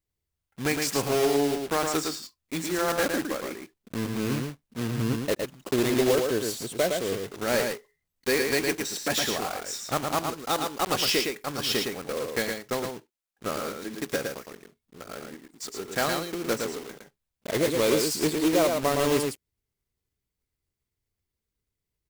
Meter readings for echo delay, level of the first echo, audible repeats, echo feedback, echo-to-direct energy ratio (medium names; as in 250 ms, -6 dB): 112 ms, -4.5 dB, 1, no regular repeats, -4.5 dB